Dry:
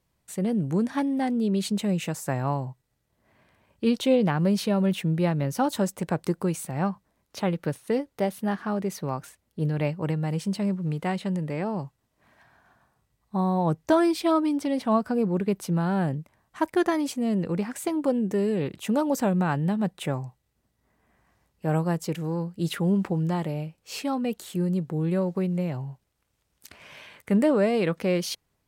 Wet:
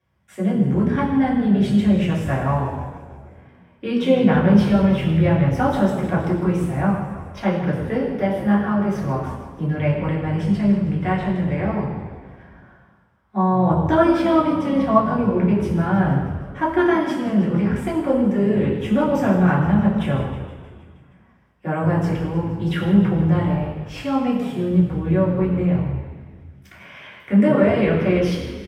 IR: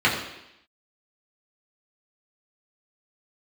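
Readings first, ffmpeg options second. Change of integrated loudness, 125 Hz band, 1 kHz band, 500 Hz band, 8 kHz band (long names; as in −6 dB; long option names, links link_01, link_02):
+7.0 dB, +8.0 dB, +7.0 dB, +5.5 dB, can't be measured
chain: -filter_complex "[0:a]asplit=8[link_01][link_02][link_03][link_04][link_05][link_06][link_07][link_08];[link_02]adelay=157,afreqshift=-53,volume=-13dB[link_09];[link_03]adelay=314,afreqshift=-106,volume=-16.9dB[link_10];[link_04]adelay=471,afreqshift=-159,volume=-20.8dB[link_11];[link_05]adelay=628,afreqshift=-212,volume=-24.6dB[link_12];[link_06]adelay=785,afreqshift=-265,volume=-28.5dB[link_13];[link_07]adelay=942,afreqshift=-318,volume=-32.4dB[link_14];[link_08]adelay=1099,afreqshift=-371,volume=-36.3dB[link_15];[link_01][link_09][link_10][link_11][link_12][link_13][link_14][link_15]amix=inputs=8:normalize=0[link_16];[1:a]atrim=start_sample=2205,asetrate=32634,aresample=44100[link_17];[link_16][link_17]afir=irnorm=-1:irlink=0,volume=-14.5dB"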